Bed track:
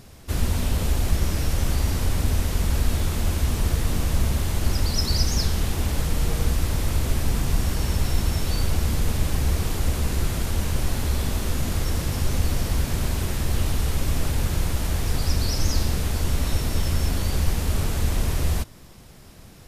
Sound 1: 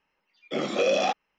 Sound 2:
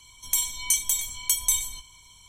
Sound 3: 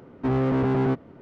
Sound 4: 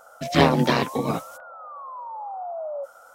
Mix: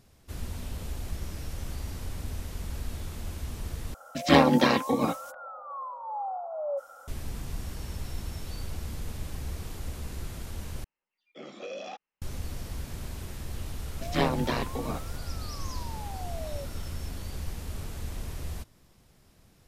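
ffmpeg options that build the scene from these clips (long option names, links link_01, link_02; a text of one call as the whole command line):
ffmpeg -i bed.wav -i cue0.wav -i cue1.wav -i cue2.wav -i cue3.wav -filter_complex "[4:a]asplit=2[link_01][link_02];[0:a]volume=-13.5dB[link_03];[link_01]aecho=1:1:3.7:0.43[link_04];[link_03]asplit=3[link_05][link_06][link_07];[link_05]atrim=end=3.944[link_08];[link_04]atrim=end=3.14,asetpts=PTS-STARTPTS,volume=-2dB[link_09];[link_06]atrim=start=7.076:end=10.844[link_10];[1:a]atrim=end=1.38,asetpts=PTS-STARTPTS,volume=-16dB[link_11];[link_07]atrim=start=12.216[link_12];[link_02]atrim=end=3.14,asetpts=PTS-STARTPTS,volume=-9dB,afade=type=in:duration=0.004:curve=hsin,afade=type=out:start_time=3.136:duration=0.004:curve=hsin,adelay=608580S[link_13];[link_08][link_09]acrossfade=duration=0.004:curve1=hsin:curve2=hsin[link_14];[link_14][link_10]acrossfade=duration=0.004:curve1=hsin:curve2=hsin[link_15];[link_15][link_11]acrossfade=duration=0.004:curve1=hsin:curve2=hsin[link_16];[link_16][link_12]acrossfade=duration=0.004:curve1=hsin:curve2=hsin[link_17];[link_17][link_13]amix=inputs=2:normalize=0" out.wav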